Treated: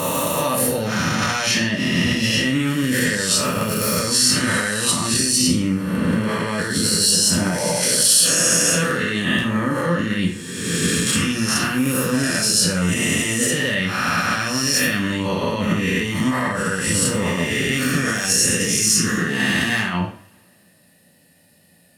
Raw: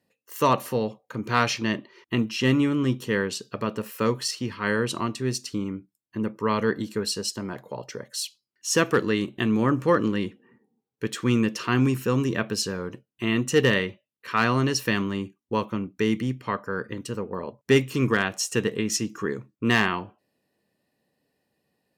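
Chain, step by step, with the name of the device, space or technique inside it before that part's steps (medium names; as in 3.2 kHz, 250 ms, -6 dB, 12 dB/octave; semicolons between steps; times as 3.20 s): reverse spectral sustain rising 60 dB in 1.45 s; loud club master (compression 2.5:1, threshold -23 dBFS, peak gain reduction 7 dB; hard clipper -13.5 dBFS, distortion -36 dB; loudness maximiser +24.5 dB); fifteen-band graphic EQ 400 Hz -8 dB, 1 kHz -7 dB, 10 kHz +12 dB; two-slope reverb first 0.4 s, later 2.1 s, from -28 dB, DRR 0 dB; trim -11 dB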